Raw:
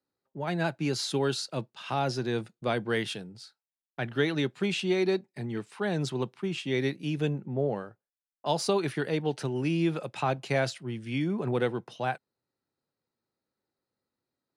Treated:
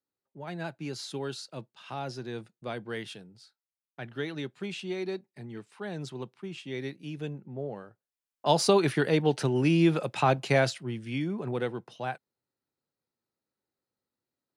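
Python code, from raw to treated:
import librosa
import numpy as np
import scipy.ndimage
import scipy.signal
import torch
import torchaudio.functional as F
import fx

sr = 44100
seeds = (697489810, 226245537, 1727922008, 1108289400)

y = fx.gain(x, sr, db=fx.line((7.75, -7.5), (8.51, 4.5), (10.45, 4.5), (11.41, -3.5)))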